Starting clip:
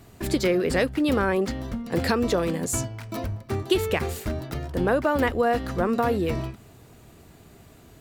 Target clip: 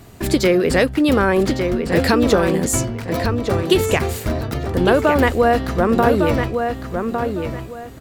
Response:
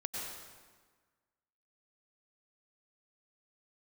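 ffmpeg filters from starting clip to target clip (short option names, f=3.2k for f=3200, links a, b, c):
-filter_complex "[0:a]asplit=2[a][b];[b]adelay=1156,lowpass=f=4.3k:p=1,volume=-6dB,asplit=2[c][d];[d]adelay=1156,lowpass=f=4.3k:p=1,volume=0.25,asplit=2[e][f];[f]adelay=1156,lowpass=f=4.3k:p=1,volume=0.25[g];[a][c][e][g]amix=inputs=4:normalize=0,volume=7dB"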